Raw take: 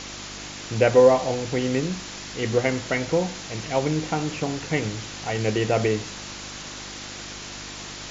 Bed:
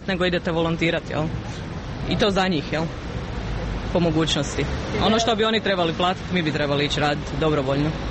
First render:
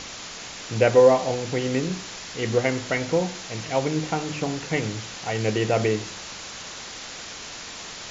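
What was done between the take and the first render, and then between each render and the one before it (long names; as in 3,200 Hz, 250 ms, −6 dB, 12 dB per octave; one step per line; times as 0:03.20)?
hum removal 50 Hz, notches 8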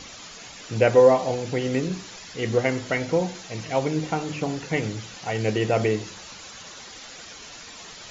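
broadband denoise 9 dB, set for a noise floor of −38 dBFS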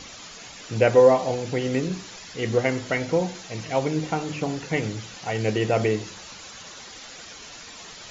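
no processing that can be heard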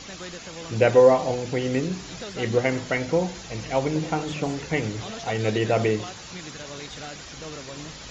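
mix in bed −18 dB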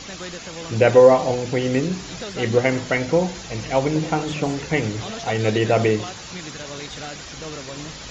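level +4 dB
brickwall limiter −2 dBFS, peak gain reduction 1.5 dB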